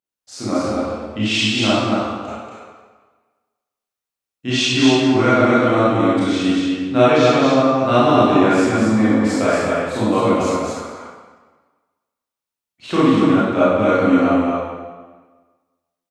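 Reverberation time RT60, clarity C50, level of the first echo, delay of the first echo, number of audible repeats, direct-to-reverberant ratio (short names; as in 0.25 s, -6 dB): 1.4 s, -6.0 dB, -2.5 dB, 0.235 s, 1, -12.5 dB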